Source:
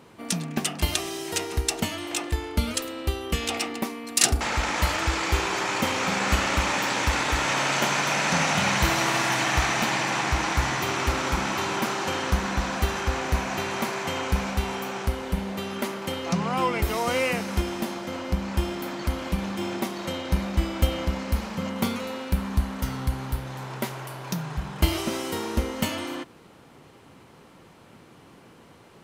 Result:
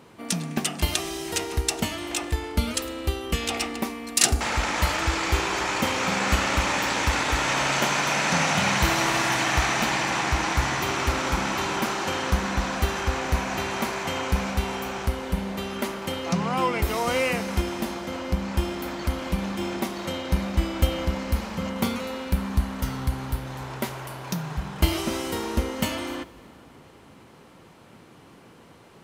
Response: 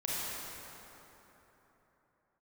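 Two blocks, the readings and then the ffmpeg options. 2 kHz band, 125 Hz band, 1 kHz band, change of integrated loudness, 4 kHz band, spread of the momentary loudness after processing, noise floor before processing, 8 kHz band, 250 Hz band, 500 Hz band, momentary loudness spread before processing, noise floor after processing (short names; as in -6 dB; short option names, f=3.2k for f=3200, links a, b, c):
+0.5 dB, +0.5 dB, +0.5 dB, +0.5 dB, +0.5 dB, 9 LU, -51 dBFS, +0.5 dB, +0.5 dB, +0.5 dB, 9 LU, -50 dBFS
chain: -filter_complex "[0:a]asplit=2[a][b];[1:a]atrim=start_sample=2205[c];[b][c]afir=irnorm=-1:irlink=0,volume=-23dB[d];[a][d]amix=inputs=2:normalize=0"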